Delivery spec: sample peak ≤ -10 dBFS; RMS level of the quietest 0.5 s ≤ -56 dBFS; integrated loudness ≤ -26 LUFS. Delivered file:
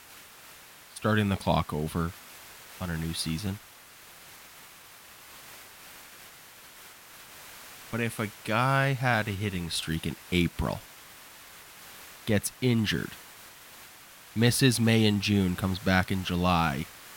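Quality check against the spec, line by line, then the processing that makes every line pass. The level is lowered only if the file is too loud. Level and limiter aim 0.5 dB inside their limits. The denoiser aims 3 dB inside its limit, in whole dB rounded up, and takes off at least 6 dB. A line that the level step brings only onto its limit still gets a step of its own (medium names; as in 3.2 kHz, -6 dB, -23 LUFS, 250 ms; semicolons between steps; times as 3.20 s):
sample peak -9.0 dBFS: fail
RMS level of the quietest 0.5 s -51 dBFS: fail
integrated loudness -28.0 LUFS: pass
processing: noise reduction 8 dB, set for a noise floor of -51 dBFS; peak limiter -10.5 dBFS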